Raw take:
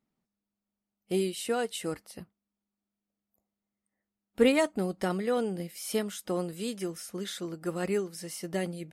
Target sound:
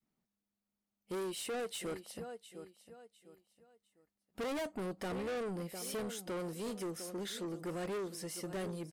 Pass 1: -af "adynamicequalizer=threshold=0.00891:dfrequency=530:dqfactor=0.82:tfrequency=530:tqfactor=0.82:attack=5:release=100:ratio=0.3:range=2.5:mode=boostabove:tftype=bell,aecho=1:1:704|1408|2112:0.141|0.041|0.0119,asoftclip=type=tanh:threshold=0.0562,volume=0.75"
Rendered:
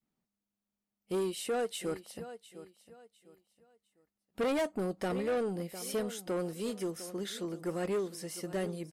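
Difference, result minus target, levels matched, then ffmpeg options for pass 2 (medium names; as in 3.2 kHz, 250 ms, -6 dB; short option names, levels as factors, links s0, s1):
saturation: distortion -5 dB
-af "adynamicequalizer=threshold=0.00891:dfrequency=530:dqfactor=0.82:tfrequency=530:tqfactor=0.82:attack=5:release=100:ratio=0.3:range=2.5:mode=boostabove:tftype=bell,aecho=1:1:704|1408|2112:0.141|0.041|0.0119,asoftclip=type=tanh:threshold=0.0211,volume=0.75"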